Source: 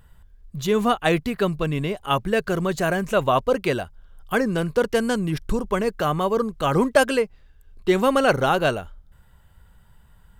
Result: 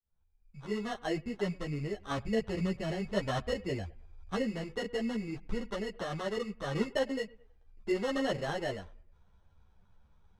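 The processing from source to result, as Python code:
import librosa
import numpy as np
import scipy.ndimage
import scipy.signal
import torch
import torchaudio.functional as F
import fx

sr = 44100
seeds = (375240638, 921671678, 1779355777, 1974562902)

y = fx.fade_in_head(x, sr, length_s=1.08)
y = fx.peak_eq(y, sr, hz=65.0, db=14.5, octaves=1.8, at=(1.92, 4.42))
y = fx.env_lowpass_down(y, sr, base_hz=790.0, full_db=-18.5)
y = fx.sample_hold(y, sr, seeds[0], rate_hz=2400.0, jitter_pct=0)
y = fx.air_absorb(y, sr, metres=91.0)
y = fx.echo_bbd(y, sr, ms=107, stages=2048, feedback_pct=32, wet_db=-23.5)
y = fx.ensemble(y, sr)
y = y * 10.0 ** (-8.5 / 20.0)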